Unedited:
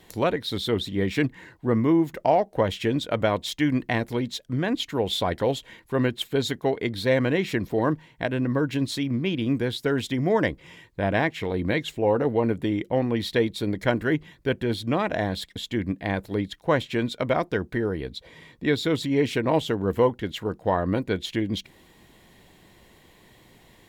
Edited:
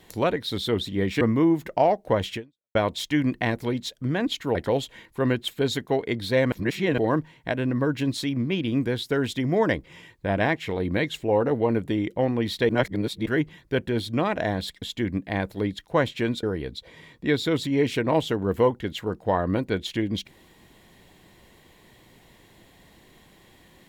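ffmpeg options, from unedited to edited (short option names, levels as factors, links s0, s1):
-filter_complex "[0:a]asplit=9[s0][s1][s2][s3][s4][s5][s6][s7][s8];[s0]atrim=end=1.212[s9];[s1]atrim=start=1.688:end=3.23,asetpts=PTS-STARTPTS,afade=t=out:st=1.142:d=0.4:c=exp[s10];[s2]atrim=start=3.23:end=5.032,asetpts=PTS-STARTPTS,afade=t=in:d=0.004:c=hsin[s11];[s3]atrim=start=5.288:end=7.262[s12];[s4]atrim=start=7.258:end=7.722,asetpts=PTS-STARTPTS,areverse[s13];[s5]atrim=start=7.718:end=13.432[s14];[s6]atrim=start=13.428:end=14.002,asetpts=PTS-STARTPTS,areverse[s15];[s7]atrim=start=13.998:end=17.172[s16];[s8]atrim=start=17.818[s17];[s10][s11]concat=n=2:v=0:a=1[s18];[s9][s18]acrossfade=d=0.004:c1=hsin:c2=hsin[s19];[s19][s12]acrossfade=d=0.004:c1=hsin:c2=hsin[s20];[s20][s13]acrossfade=d=0.004:c1=hsin:c2=hsin[s21];[s21][s14]acrossfade=d=0.004:c1=hsin:c2=hsin[s22];[s22][s15]acrossfade=d=0.004:c1=hsin:c2=hsin[s23];[s23][s16]acrossfade=d=0.004:c1=hsin:c2=hsin[s24];[s24][s17]acrossfade=d=0.004:c1=hsin:c2=hsin"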